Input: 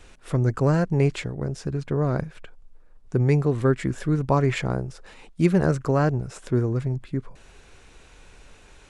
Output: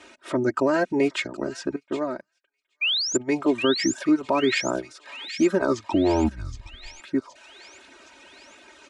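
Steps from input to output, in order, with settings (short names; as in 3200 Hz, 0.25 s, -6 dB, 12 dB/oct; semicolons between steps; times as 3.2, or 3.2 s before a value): HPF 260 Hz 12 dB/oct; reverb removal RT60 0.77 s; 5.53 tape stop 1.47 s; comb 3.2 ms, depth 86%; limiter -16 dBFS, peak gain reduction 10 dB; 2.81–3.17 painted sound rise 2300–7500 Hz -23 dBFS; air absorption 60 m; thin delay 0.769 s, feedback 59%, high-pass 2500 Hz, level -8 dB; 1.76–3.32 upward expander 2.5:1, over -42 dBFS; gain +4.5 dB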